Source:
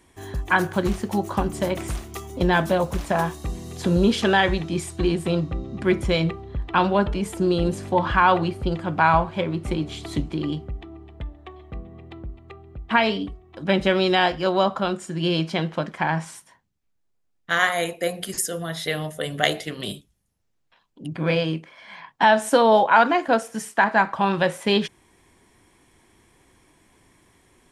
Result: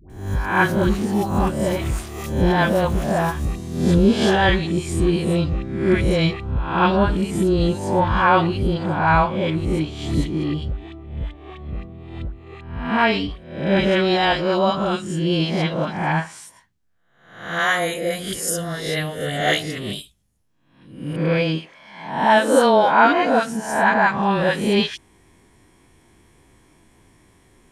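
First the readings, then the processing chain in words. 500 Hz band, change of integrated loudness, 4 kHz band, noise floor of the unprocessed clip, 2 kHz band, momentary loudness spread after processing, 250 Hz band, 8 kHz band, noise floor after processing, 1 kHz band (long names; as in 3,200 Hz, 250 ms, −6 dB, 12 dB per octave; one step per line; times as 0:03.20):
+2.5 dB, +2.5 dB, +2.0 dB, −69 dBFS, +2.0 dB, 15 LU, +4.0 dB, +2.5 dB, −56 dBFS, +2.0 dB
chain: peak hold with a rise ahead of every peak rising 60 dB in 0.64 s
low-shelf EQ 340 Hz +5.5 dB
all-pass dispersion highs, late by 99 ms, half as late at 760 Hz
level −1 dB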